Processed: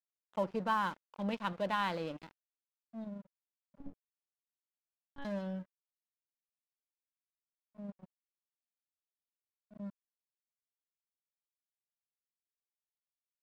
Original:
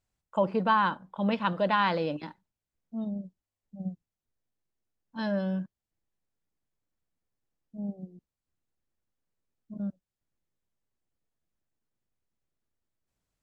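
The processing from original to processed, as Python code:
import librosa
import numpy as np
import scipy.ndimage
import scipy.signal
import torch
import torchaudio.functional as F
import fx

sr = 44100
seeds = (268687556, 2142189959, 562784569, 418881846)

y = fx.lpc_monotone(x, sr, seeds[0], pitch_hz=280.0, order=10, at=(3.78, 5.25))
y = np.sign(y) * np.maximum(np.abs(y) - 10.0 ** (-41.5 / 20.0), 0.0)
y = y * librosa.db_to_amplitude(-7.5)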